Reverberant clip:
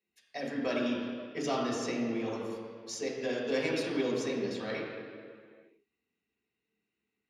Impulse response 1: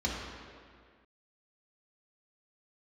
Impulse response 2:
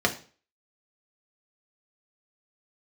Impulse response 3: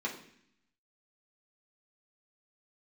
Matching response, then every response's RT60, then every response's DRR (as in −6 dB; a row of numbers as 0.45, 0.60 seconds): 1; 1.9, 0.40, 0.65 seconds; −5.0, 1.5, −4.0 decibels